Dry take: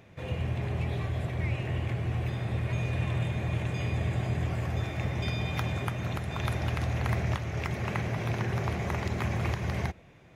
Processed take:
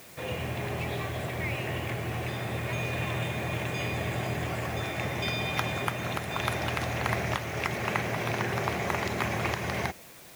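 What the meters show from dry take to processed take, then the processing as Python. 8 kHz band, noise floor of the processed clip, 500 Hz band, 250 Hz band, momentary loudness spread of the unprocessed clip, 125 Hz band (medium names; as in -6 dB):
+7.5 dB, -49 dBFS, +4.0 dB, 0.0 dB, 2 LU, -4.5 dB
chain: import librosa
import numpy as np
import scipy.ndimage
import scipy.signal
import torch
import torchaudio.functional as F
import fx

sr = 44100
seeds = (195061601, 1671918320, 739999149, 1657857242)

p1 = fx.highpass(x, sr, hz=370.0, slope=6)
p2 = fx.quant_dither(p1, sr, seeds[0], bits=8, dither='triangular')
p3 = p1 + (p2 * librosa.db_to_amplitude(-6.0))
y = p3 * librosa.db_to_amplitude(2.5)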